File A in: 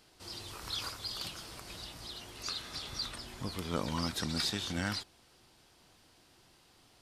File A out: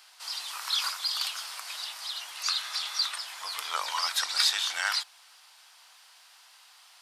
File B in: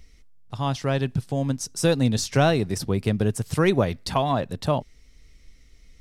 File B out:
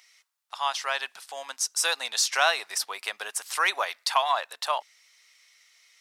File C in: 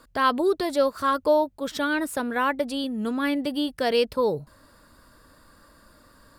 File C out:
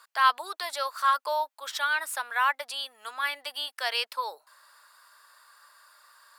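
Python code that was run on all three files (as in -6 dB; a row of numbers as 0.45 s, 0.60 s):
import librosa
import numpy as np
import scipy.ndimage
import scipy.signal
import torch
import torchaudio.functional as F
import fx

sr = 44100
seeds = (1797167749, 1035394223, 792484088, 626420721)

y = scipy.signal.sosfilt(scipy.signal.butter(4, 890.0, 'highpass', fs=sr, output='sos'), x)
y = y * 10.0 ** (-9 / 20.0) / np.max(np.abs(y))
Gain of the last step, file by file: +9.5 dB, +5.0 dB, +1.5 dB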